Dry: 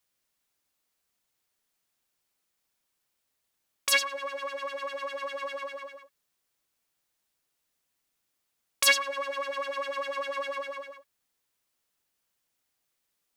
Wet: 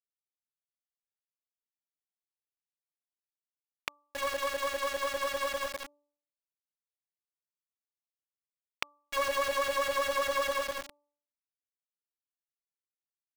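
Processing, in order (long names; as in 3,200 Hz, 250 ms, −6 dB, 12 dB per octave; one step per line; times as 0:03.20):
feedback echo with a band-pass in the loop 61 ms, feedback 72%, band-pass 810 Hz, level −14.5 dB
gate with flip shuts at −21 dBFS, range −37 dB
centre clipping without the shift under −35 dBFS
hum removal 291.3 Hz, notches 4
level +3.5 dB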